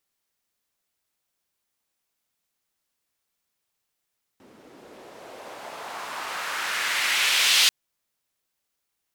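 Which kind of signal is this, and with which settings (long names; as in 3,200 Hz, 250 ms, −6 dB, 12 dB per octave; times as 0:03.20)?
filter sweep on noise white, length 3.29 s bandpass, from 270 Hz, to 3,400 Hz, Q 1.5, exponential, gain ramp +25 dB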